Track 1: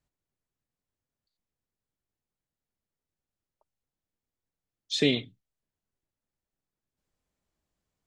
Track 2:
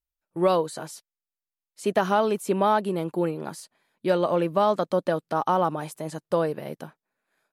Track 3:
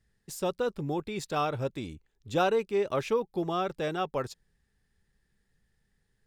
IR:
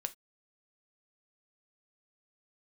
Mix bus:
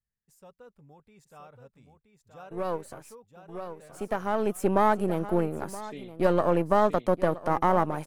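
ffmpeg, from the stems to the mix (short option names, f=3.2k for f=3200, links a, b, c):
-filter_complex "[0:a]adelay=900,volume=-18dB,asplit=2[a][b];[b]volume=-3.5dB[c];[1:a]aeval=exprs='if(lt(val(0),0),0.447*val(0),val(0))':c=same,adelay=2150,volume=1.5dB,asplit=2[d][e];[e]volume=-17dB[f];[2:a]equalizer=f=340:t=o:w=0.39:g=-13,volume=-19.5dB,asplit=3[g][h][i];[h]volume=-6dB[j];[i]apad=whole_len=426762[k];[d][k]sidechaincompress=threshold=-58dB:ratio=4:attack=41:release=410[l];[c][f][j]amix=inputs=3:normalize=0,aecho=0:1:973:1[m];[a][l][g][m]amix=inputs=4:normalize=0,equalizer=f=3.9k:w=1.3:g=-9.5"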